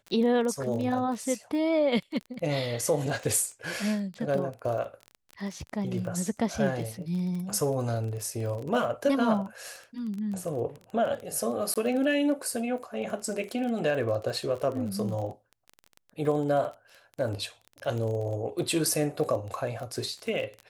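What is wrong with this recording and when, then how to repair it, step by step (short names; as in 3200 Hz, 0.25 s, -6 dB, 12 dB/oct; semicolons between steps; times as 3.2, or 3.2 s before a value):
crackle 23/s -33 dBFS
11.74–11.76 gap 17 ms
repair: de-click; interpolate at 11.74, 17 ms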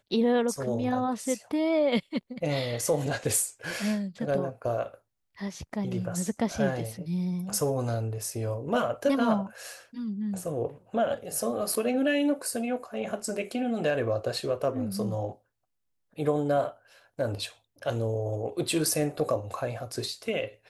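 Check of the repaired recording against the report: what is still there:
none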